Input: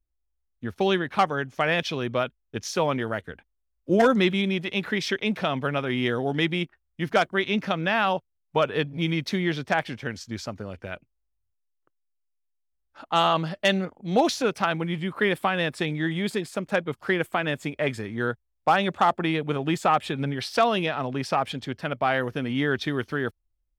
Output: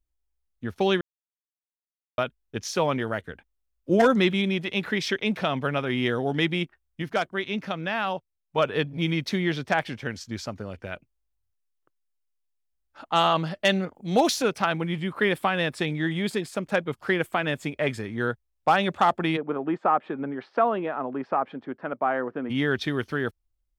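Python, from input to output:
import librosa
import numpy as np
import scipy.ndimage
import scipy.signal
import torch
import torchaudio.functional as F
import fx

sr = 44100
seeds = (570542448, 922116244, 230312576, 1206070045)

y = fx.high_shelf(x, sr, hz=fx.line((13.94, 5600.0), (14.47, 8700.0)), db=10.0, at=(13.94, 14.47), fade=0.02)
y = fx.cheby1_bandpass(y, sr, low_hz=260.0, high_hz=1300.0, order=2, at=(19.36, 22.49), fade=0.02)
y = fx.edit(y, sr, fx.silence(start_s=1.01, length_s=1.17),
    fx.clip_gain(start_s=7.02, length_s=1.56, db=-4.5), tone=tone)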